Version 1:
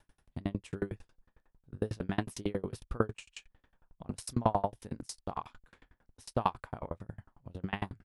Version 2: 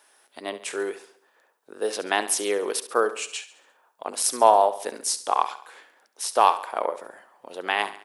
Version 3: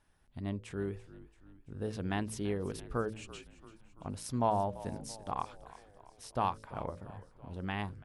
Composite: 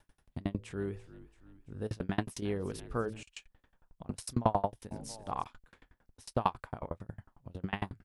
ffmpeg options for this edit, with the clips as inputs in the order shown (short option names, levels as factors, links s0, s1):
-filter_complex "[2:a]asplit=3[s0][s1][s2];[0:a]asplit=4[s3][s4][s5][s6];[s3]atrim=end=0.582[s7];[s0]atrim=start=0.578:end=1.872[s8];[s4]atrim=start=1.868:end=2.422[s9];[s1]atrim=start=2.418:end=3.232[s10];[s5]atrim=start=3.228:end=4.912[s11];[s2]atrim=start=4.908:end=5.442[s12];[s6]atrim=start=5.438[s13];[s7][s8]acrossfade=d=0.004:c1=hsin:c2=hsin[s14];[s14][s9]acrossfade=d=0.004:c1=hsin:c2=hsin[s15];[s15][s10]acrossfade=d=0.004:c1=hsin:c2=hsin[s16];[s16][s11]acrossfade=d=0.004:c1=hsin:c2=hsin[s17];[s17][s12]acrossfade=d=0.004:c1=hsin:c2=hsin[s18];[s18][s13]acrossfade=d=0.004:c1=hsin:c2=hsin"